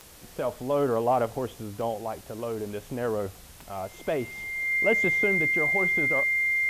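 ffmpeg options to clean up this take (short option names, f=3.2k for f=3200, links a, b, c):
-af "adeclick=t=4,bandreject=f=2.1k:w=30,afwtdn=0.0032"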